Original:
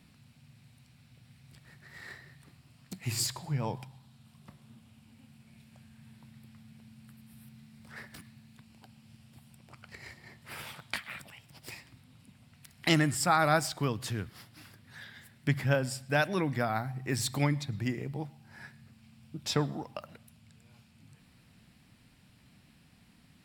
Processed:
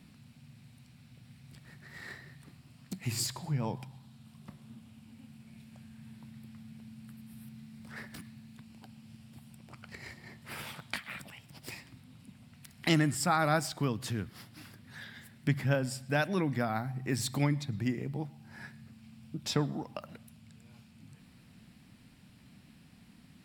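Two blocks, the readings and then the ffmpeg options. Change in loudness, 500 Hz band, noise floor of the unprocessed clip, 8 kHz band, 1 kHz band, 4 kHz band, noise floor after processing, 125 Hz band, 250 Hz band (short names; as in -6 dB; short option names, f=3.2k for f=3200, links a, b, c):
-2.5 dB, -2.0 dB, -62 dBFS, -2.0 dB, -2.5 dB, -2.5 dB, -58 dBFS, -0.5 dB, +0.5 dB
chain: -filter_complex "[0:a]equalizer=f=220:w=1.2:g=5,asplit=2[a][b];[b]acompressor=threshold=-39dB:ratio=6,volume=-2.5dB[c];[a][c]amix=inputs=2:normalize=0,volume=-4dB"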